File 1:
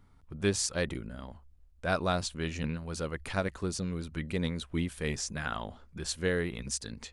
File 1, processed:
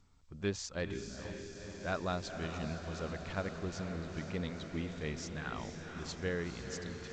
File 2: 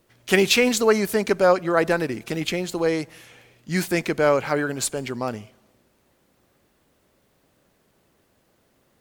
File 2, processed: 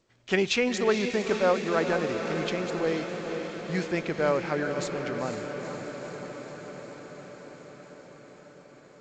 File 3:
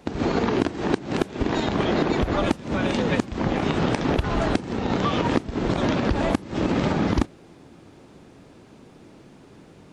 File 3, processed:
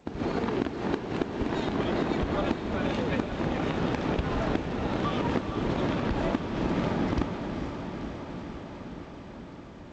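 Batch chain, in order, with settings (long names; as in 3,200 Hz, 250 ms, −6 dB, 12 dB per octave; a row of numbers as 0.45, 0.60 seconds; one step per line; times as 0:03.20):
high-shelf EQ 5,900 Hz −7 dB
feedback delay with all-pass diffusion 478 ms, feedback 74%, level −7.5 dB
level −6.5 dB
G.722 64 kbit/s 16,000 Hz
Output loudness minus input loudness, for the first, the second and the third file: −6.5, −6.5, −6.0 LU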